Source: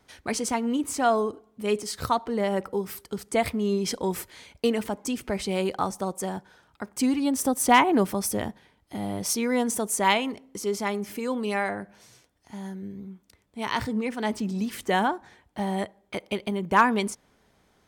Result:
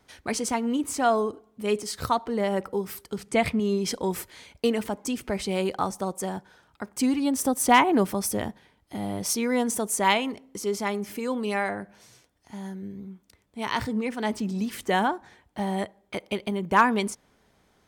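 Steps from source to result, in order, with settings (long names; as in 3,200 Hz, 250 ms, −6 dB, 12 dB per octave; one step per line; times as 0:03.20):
0:03.18–0:03.60: graphic EQ with 15 bands 160 Hz +10 dB, 2,500 Hz +5 dB, 16,000 Hz −11 dB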